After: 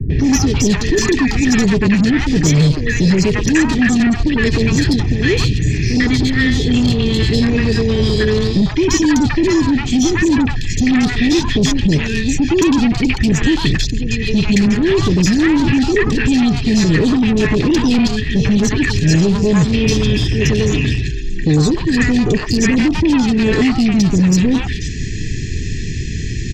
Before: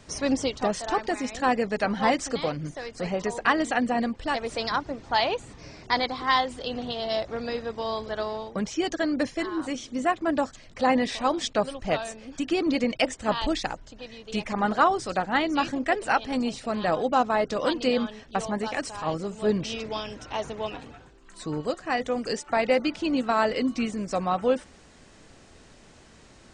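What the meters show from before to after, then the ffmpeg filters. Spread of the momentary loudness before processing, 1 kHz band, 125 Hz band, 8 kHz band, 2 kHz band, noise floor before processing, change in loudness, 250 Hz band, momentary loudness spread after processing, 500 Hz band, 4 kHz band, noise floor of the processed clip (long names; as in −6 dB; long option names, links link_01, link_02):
9 LU, −1.5 dB, +25.5 dB, +16.5 dB, +11.0 dB, −53 dBFS, +12.5 dB, +17.0 dB, 5 LU, +8.0 dB, +11.5 dB, −21 dBFS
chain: -filter_complex "[0:a]aeval=exprs='0.447*(cos(1*acos(clip(val(0)/0.447,-1,1)))-cos(1*PI/2))+0.0631*(cos(5*acos(clip(val(0)/0.447,-1,1)))-cos(5*PI/2))':channel_layout=same,acontrast=73,asuperstop=centerf=870:order=20:qfactor=0.65,equalizer=frequency=640:width=0.8:gain=14,aecho=1:1:1.2:0.51,acrossover=split=130|1100[link_01][link_02][link_03];[link_01]acompressor=threshold=-35dB:ratio=4[link_04];[link_02]acompressor=threshold=-17dB:ratio=4[link_05];[link_03]acompressor=threshold=-29dB:ratio=4[link_06];[link_04][link_05][link_06]amix=inputs=3:normalize=0,aresample=16000,asoftclip=type=tanh:threshold=-20dB,aresample=44100,lowshelf=frequency=170:width_type=q:width=1.5:gain=7.5,aeval=exprs='0.251*sin(PI/2*1.78*val(0)/0.251)':channel_layout=same,acrossover=split=690|3300[link_07][link_08][link_09];[link_08]adelay=100[link_10];[link_09]adelay=240[link_11];[link_07][link_10][link_11]amix=inputs=3:normalize=0,volume=4.5dB"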